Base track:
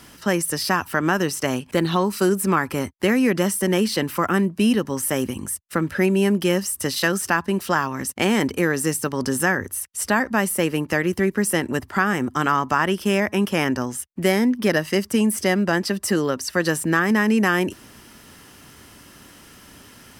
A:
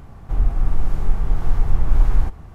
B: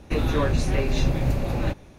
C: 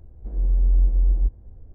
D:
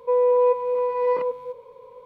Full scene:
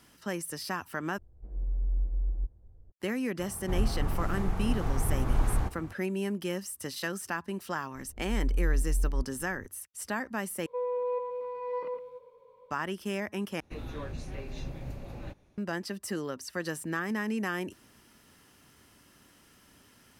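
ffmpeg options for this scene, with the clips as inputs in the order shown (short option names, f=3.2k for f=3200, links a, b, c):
-filter_complex "[3:a]asplit=2[a][b];[0:a]volume=-13.5dB[c];[a]bandreject=f=250:w=6.7[d];[1:a]highpass=f=97:p=1[e];[4:a]aecho=1:1:114:0.299[f];[c]asplit=4[g][h][i][j];[g]atrim=end=1.184[k];[d]atrim=end=1.74,asetpts=PTS-STARTPTS,volume=-11.5dB[l];[h]atrim=start=2.916:end=10.664[m];[f]atrim=end=2.05,asetpts=PTS-STARTPTS,volume=-12.5dB[n];[i]atrim=start=12.706:end=13.604[o];[2:a]atrim=end=1.98,asetpts=PTS-STARTPTS,volume=-16.5dB[p];[j]atrim=start=15.576[q];[e]atrim=end=2.54,asetpts=PTS-STARTPTS,volume=-1.5dB,afade=t=in:d=0.004:c=hsin,afade=t=out:st=2.536:d=0.004:c=hsin,adelay=3390[r];[b]atrim=end=1.74,asetpts=PTS-STARTPTS,volume=-9dB,afade=t=in:d=0.004:c=hsin,afade=t=out:st=1.736:d=0.004:c=hsin,adelay=350154S[s];[k][l]acrossfade=d=0.004:c1=hsin:c2=hsin[t];[t][m]acrossfade=d=0.004:c1=hsin:c2=hsin[u];[u][n]acrossfade=d=0.004:c1=hsin:c2=hsin[v];[v][o]acrossfade=d=0.004:c1=hsin:c2=hsin[w];[w][p]acrossfade=d=0.004:c1=hsin:c2=hsin[x];[x][q]acrossfade=d=0.004:c1=hsin:c2=hsin[y];[y][r][s]amix=inputs=3:normalize=0"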